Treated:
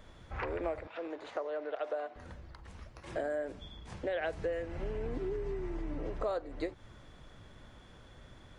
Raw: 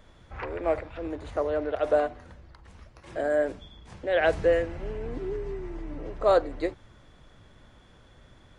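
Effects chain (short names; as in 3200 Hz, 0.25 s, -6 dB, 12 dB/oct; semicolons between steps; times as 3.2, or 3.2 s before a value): compressor 8:1, threshold -32 dBFS, peak gain reduction 15.5 dB; 0.87–2.16 BPF 420–5600 Hz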